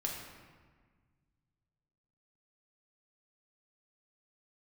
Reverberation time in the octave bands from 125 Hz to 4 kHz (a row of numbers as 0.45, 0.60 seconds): 2.8, 2.1, 1.5, 1.5, 1.4, 1.0 seconds